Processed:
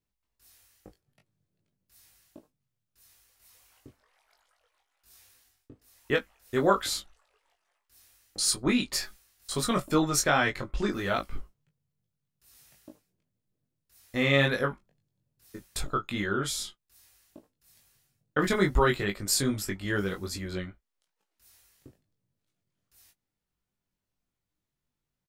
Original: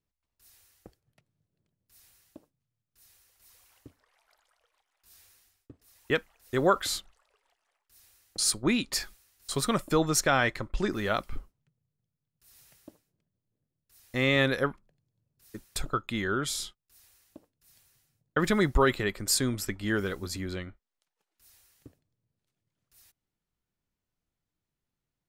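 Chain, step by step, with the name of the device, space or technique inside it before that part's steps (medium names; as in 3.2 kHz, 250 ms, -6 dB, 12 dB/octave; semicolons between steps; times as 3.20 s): double-tracked vocal (doubling 16 ms -10.5 dB; chorus 2.4 Hz, delay 19.5 ms, depth 2.1 ms); trim +3 dB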